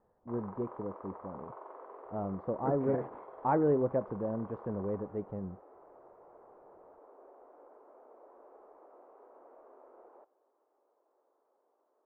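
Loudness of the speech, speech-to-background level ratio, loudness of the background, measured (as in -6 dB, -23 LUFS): -34.5 LUFS, 17.5 dB, -52.0 LUFS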